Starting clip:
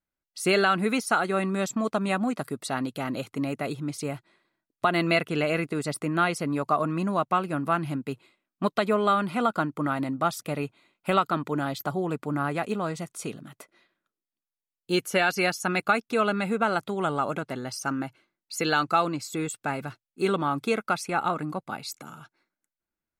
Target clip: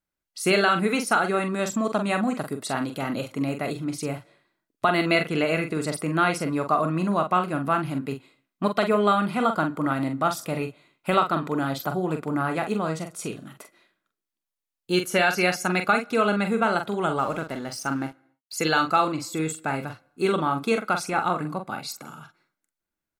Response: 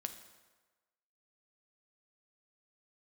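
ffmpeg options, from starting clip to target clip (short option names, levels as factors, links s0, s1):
-filter_complex "[0:a]asplit=2[s0][s1];[s1]adelay=44,volume=0.447[s2];[s0][s2]amix=inputs=2:normalize=0,asettb=1/sr,asplit=3[s3][s4][s5];[s3]atrim=end=17.194[s6];[s4]atrim=start=17.19:end=18.54,asetpts=PTS-STARTPTS,afade=t=in:d=0.004:c=qsin,afade=t=out:st=1.346:d=0.004:c=qsin,aeval=exprs='sgn(val(0))*max(abs(val(0))-0.00355,0)':c=same[s7];[s5]atrim=start=18.536[s8];[s6][s7]acrossfade=d=0.004:c1=hsin:c2=qsin[s9];[s9][s8]acrossfade=d=0.004:c1=qsin:c2=hsin,asplit=2[s10][s11];[1:a]atrim=start_sample=2205,afade=t=out:st=0.34:d=0.01,atrim=end_sample=15435[s12];[s11][s12]afir=irnorm=-1:irlink=0,volume=0.251[s13];[s10][s13]amix=inputs=2:normalize=0"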